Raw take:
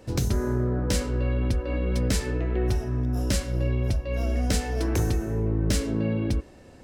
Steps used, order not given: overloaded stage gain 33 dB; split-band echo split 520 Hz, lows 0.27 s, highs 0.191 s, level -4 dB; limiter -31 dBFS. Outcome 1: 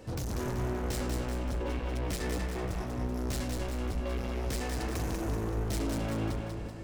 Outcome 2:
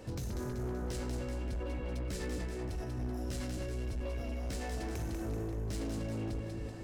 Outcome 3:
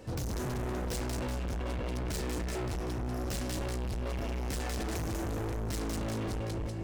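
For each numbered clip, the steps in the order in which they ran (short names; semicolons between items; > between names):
overloaded stage > limiter > split-band echo; limiter > split-band echo > overloaded stage; split-band echo > overloaded stage > limiter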